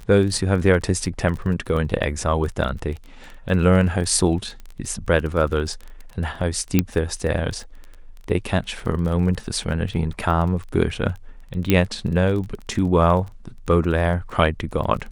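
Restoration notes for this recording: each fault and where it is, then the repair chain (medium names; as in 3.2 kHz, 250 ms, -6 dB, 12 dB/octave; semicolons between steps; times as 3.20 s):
crackle 22 per s -29 dBFS
6.79 s: pop -3 dBFS
11.70 s: pop -4 dBFS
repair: de-click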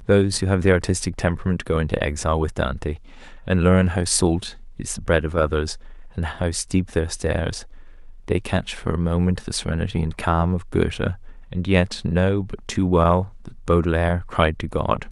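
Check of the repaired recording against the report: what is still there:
6.79 s: pop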